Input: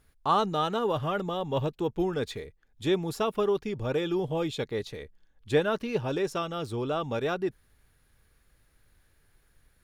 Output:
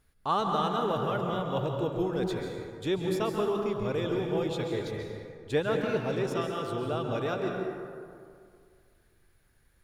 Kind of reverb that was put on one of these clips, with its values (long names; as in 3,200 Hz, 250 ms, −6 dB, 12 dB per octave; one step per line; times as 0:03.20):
dense smooth reverb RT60 2.2 s, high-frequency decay 0.45×, pre-delay 120 ms, DRR 1.5 dB
level −3.5 dB